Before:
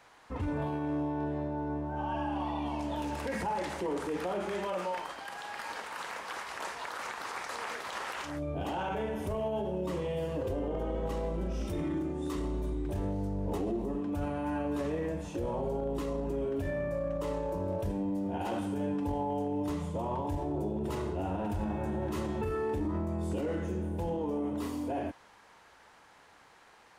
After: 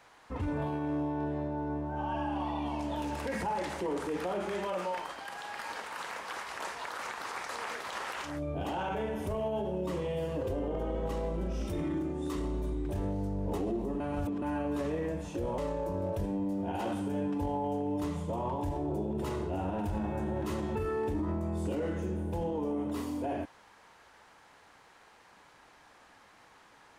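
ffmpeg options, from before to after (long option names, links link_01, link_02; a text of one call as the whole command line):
ffmpeg -i in.wav -filter_complex "[0:a]asplit=4[link_01][link_02][link_03][link_04];[link_01]atrim=end=14.002[link_05];[link_02]atrim=start=13.998:end=14.422,asetpts=PTS-STARTPTS,areverse[link_06];[link_03]atrim=start=14.418:end=15.582[link_07];[link_04]atrim=start=17.238[link_08];[link_05][link_06]acrossfade=duration=0.004:curve1=hsin:curve2=hsin[link_09];[link_09][link_07]acrossfade=duration=0.004:curve1=hsin:curve2=hsin[link_10];[link_10][link_08]acrossfade=duration=0.004:curve1=hsin:curve2=hsin" out.wav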